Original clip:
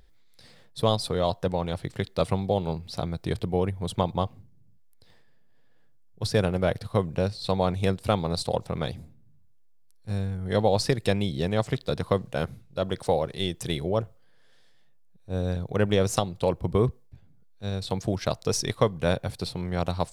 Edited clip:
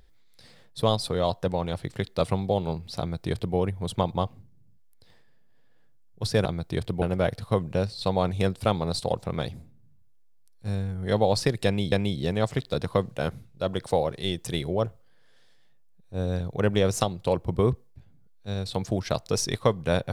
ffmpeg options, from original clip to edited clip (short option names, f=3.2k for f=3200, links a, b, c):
-filter_complex "[0:a]asplit=4[a][b][c][d];[a]atrim=end=6.452[e];[b]atrim=start=2.988:end=3.562[f];[c]atrim=start=6.448:end=11.352[g];[d]atrim=start=11.078[h];[e][f]acrossfade=d=0.004:c1=hsin:c2=hsin[i];[i][g]acrossfade=d=0.004:c1=hsin:c2=hsin[j];[j][h]acrossfade=d=0.004:c1=hsin:c2=hsin"